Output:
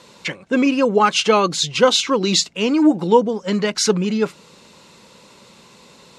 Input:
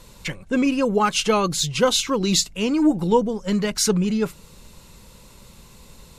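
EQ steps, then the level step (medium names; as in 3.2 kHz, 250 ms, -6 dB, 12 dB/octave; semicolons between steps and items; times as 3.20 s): band-pass 230–5900 Hz; +5.0 dB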